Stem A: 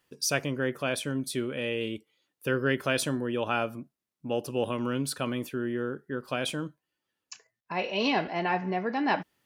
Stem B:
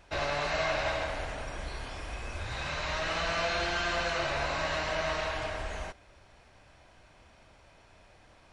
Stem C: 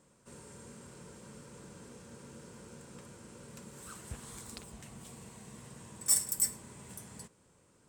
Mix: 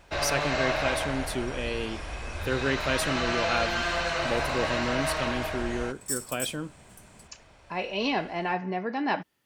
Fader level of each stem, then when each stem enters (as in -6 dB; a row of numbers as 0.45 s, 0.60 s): -1.0 dB, +2.5 dB, -5.0 dB; 0.00 s, 0.00 s, 0.00 s